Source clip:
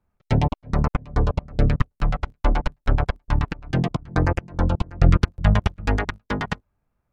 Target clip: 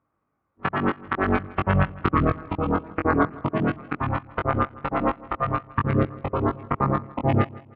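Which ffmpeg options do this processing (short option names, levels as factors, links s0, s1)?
-filter_complex "[0:a]areverse,asplit=2[s0][s1];[s1]adelay=19,volume=0.668[s2];[s0][s2]amix=inputs=2:normalize=0,aecho=1:1:148|296|444:0.0944|0.0349|0.0129,asetrate=40517,aresample=44100,highpass=130,equalizer=f=170:t=q:w=4:g=-5,equalizer=f=310:t=q:w=4:g=7,equalizer=f=1200:t=q:w=4:g=9,lowpass=f=2700:w=0.5412,lowpass=f=2700:w=1.3066"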